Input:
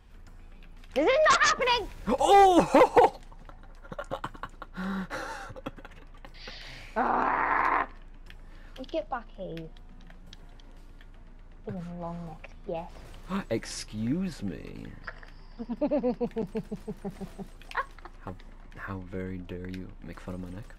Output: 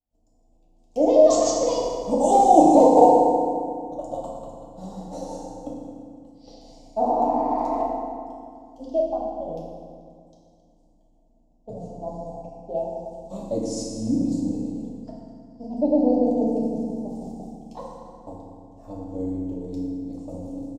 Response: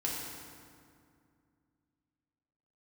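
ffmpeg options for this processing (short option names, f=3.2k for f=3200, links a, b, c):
-filter_complex "[0:a]agate=range=-33dB:threshold=-37dB:ratio=3:detection=peak,firequalizer=gain_entry='entry(150,0);entry(240,10);entry(390,1);entry(640,15);entry(1500,-30);entry(3000,-10);entry(4500,0);entry(7100,11);entry(11000,-3)':delay=0.05:min_phase=1[a];[1:a]atrim=start_sample=2205[b];[a][b]afir=irnorm=-1:irlink=0,volume=-6dB"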